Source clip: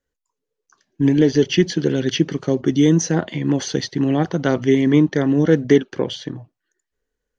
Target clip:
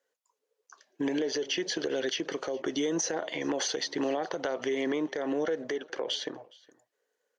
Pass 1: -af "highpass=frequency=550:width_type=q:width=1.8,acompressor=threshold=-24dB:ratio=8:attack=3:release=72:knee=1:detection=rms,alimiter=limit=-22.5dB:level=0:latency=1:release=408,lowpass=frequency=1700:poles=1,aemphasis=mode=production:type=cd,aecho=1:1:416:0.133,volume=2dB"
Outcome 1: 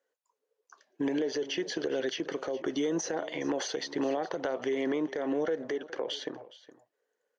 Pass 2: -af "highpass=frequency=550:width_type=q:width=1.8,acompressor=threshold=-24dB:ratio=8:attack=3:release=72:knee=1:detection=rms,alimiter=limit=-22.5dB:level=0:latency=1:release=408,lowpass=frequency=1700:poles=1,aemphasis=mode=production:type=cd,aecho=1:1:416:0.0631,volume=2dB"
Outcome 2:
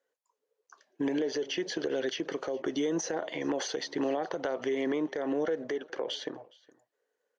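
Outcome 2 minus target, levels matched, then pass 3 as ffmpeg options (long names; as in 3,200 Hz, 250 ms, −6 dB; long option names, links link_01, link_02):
4,000 Hz band −3.5 dB
-af "highpass=frequency=550:width_type=q:width=1.8,acompressor=threshold=-24dB:ratio=8:attack=3:release=72:knee=1:detection=rms,alimiter=limit=-22.5dB:level=0:latency=1:release=408,lowpass=frequency=3800:poles=1,aemphasis=mode=production:type=cd,aecho=1:1:416:0.0631,volume=2dB"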